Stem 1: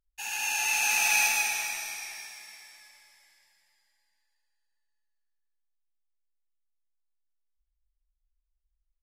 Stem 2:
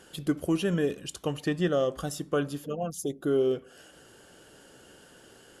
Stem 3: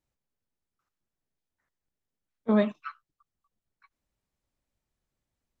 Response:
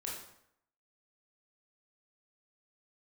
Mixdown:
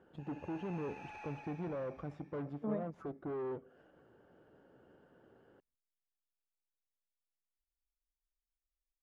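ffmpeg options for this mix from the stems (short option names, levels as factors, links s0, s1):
-filter_complex "[0:a]volume=0.168[s0];[1:a]aeval=exprs='(tanh(50.1*val(0)+0.8)-tanh(0.8))/50.1':c=same,highpass=70,volume=0.708[s1];[2:a]adelay=150,volume=0.178,asplit=2[s2][s3];[s3]volume=0.0891[s4];[3:a]atrim=start_sample=2205[s5];[s4][s5]afir=irnorm=-1:irlink=0[s6];[s0][s1][s2][s6]amix=inputs=4:normalize=0,lowpass=1100"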